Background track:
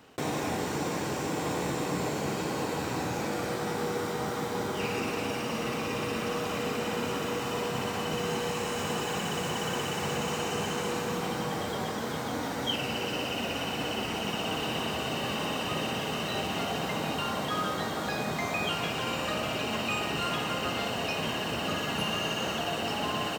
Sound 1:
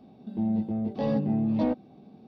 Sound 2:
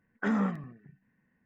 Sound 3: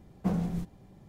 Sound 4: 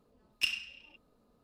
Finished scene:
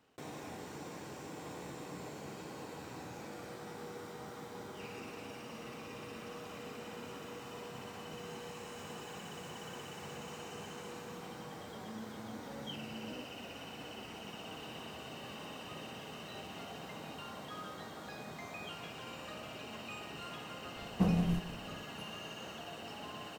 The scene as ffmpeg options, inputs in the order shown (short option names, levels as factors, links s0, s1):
-filter_complex "[0:a]volume=0.178[s0];[1:a]acompressor=threshold=0.0316:ratio=6:attack=3.2:release=140:knee=1:detection=peak[s1];[3:a]asplit=2[s2][s3];[s3]adelay=169.1,volume=0.224,highshelf=f=4000:g=-3.8[s4];[s2][s4]amix=inputs=2:normalize=0[s5];[s1]atrim=end=2.27,asetpts=PTS-STARTPTS,volume=0.188,afade=t=in:d=0.004:c=hsin,afade=t=out:st=2.266:d=0.004:c=hsin,adelay=11490[s6];[s5]atrim=end=1.08,asetpts=PTS-STARTPTS,volume=0.944,afade=t=in:d=0.004:c=hsin,afade=t=out:st=1.076:d=0.004:c=hsin,adelay=20750[s7];[s0][s6][s7]amix=inputs=3:normalize=0"